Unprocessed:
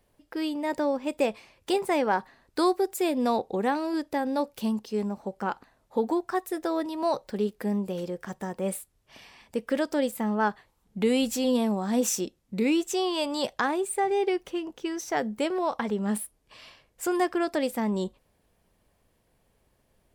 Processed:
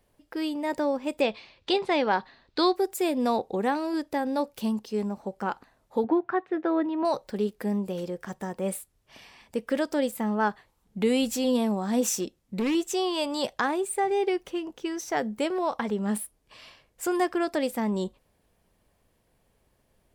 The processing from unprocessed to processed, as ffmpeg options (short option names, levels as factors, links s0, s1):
-filter_complex "[0:a]asettb=1/sr,asplit=3[s0][s1][s2];[s0]atrim=end=1.214[s3];[s1]atrim=start=1.21:end=2.76,asetpts=PTS-STARTPTS,afade=t=in:d=0.004:c=qsin,afade=t=out:st=1.546:d=0.004:c=qsin,lowpass=f=4000:t=q:w=2.6[s4];[s2]atrim=start=2.756[s5];[s3][s4]acrossfade=d=0.004:c1=hsin:c2=qsin[s6];[s6][s5]acrossfade=d=0.004:c1=qsin:c2=hsin,asettb=1/sr,asplit=3[s7][s8][s9];[s7]atrim=end=6.044[s10];[s8]atrim=start=6.04:end=7.05,asetpts=PTS-STARTPTS,afade=t=in:d=0.004:c=qsin,afade=t=out:st=1.006:d=0.004:c=qsin,highpass=110,equalizer=f=140:t=q:w=4:g=7,equalizer=f=310:t=q:w=4:g=5,equalizer=f=1500:t=q:w=4:g=4,lowpass=f=2900:w=0.5412,lowpass=f=2900:w=1.3066[s11];[s9]atrim=start=7.046[s12];[s10][s11]acrossfade=d=0.004:c1=hsin:c2=qsin[s13];[s13][s12]acrossfade=d=0.004:c1=qsin:c2=hsin,asettb=1/sr,asplit=3[s14][s15][s16];[s14]atrim=end=12.134[s17];[s15]atrim=start=12.13:end=12.75,asetpts=PTS-STARTPTS,afade=t=in:d=0.004:c=qsin,afade=t=out:st=0.616:d=0.004:c=qsin,asoftclip=type=hard:threshold=0.075[s18];[s16]atrim=start=12.746[s19];[s17][s18]acrossfade=d=0.004:c1=hsin:c2=qsin[s20];[s20][s19]acrossfade=d=0.004:c1=qsin:c2=hsin"